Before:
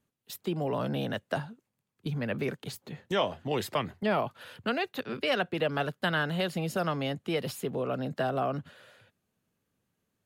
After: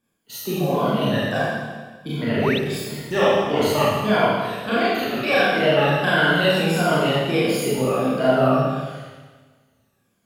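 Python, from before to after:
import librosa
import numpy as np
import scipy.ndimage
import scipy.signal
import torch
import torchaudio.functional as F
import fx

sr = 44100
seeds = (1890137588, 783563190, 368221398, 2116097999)

y = fx.spec_ripple(x, sr, per_octave=1.8, drift_hz=-1.5, depth_db=13)
y = fx.rev_schroeder(y, sr, rt60_s=1.4, comb_ms=27, drr_db=-9.5)
y = fx.spec_paint(y, sr, seeds[0], shape='rise', start_s=2.34, length_s=0.25, low_hz=250.0, high_hz=4300.0, level_db=-27.0)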